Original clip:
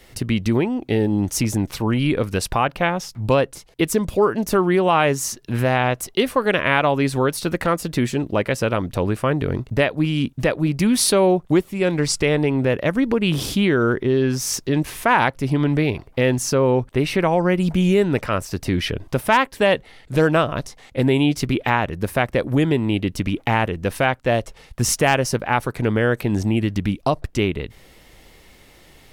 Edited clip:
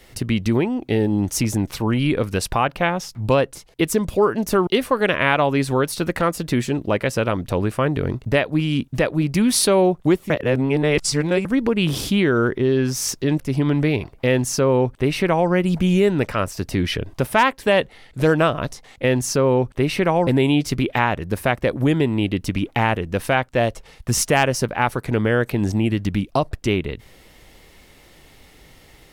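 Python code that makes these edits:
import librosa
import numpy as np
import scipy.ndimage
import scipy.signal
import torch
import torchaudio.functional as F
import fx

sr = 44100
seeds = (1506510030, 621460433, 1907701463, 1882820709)

y = fx.edit(x, sr, fx.cut(start_s=4.67, length_s=1.45),
    fx.reverse_span(start_s=11.75, length_s=1.15),
    fx.cut(start_s=14.85, length_s=0.49),
    fx.duplicate(start_s=16.21, length_s=1.23, to_s=20.98), tone=tone)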